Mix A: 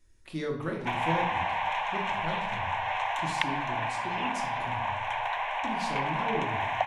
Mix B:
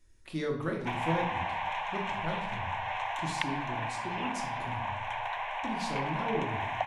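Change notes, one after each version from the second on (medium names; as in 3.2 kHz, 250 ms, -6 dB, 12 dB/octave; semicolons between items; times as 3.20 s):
background -4.0 dB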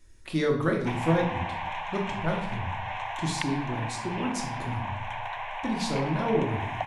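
speech +7.5 dB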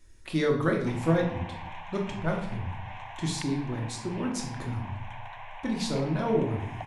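background -8.5 dB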